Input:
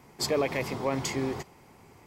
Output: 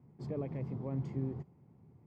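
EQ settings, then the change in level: band-pass filter 140 Hz, Q 1.7; +1.0 dB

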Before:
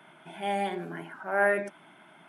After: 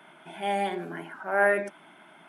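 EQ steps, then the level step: high-pass 170 Hz; +2.0 dB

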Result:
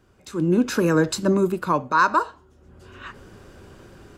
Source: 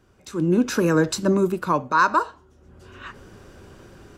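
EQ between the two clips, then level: band-stop 5.8 kHz, Q 21; 0.0 dB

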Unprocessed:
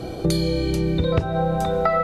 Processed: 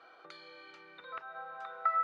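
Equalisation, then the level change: ladder band-pass 1.5 kHz, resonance 55%; distance through air 60 m; -2.5 dB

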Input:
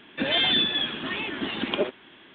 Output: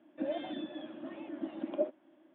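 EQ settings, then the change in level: two resonant band-passes 430 Hz, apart 0.89 oct; -1.0 dB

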